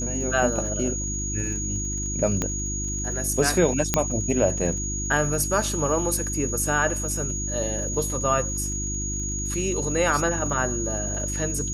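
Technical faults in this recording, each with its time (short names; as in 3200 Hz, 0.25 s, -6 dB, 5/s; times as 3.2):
crackle 49/s -35 dBFS
hum 50 Hz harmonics 7 -31 dBFS
tone 6700 Hz -29 dBFS
2.42 pop -11 dBFS
3.94 pop -4 dBFS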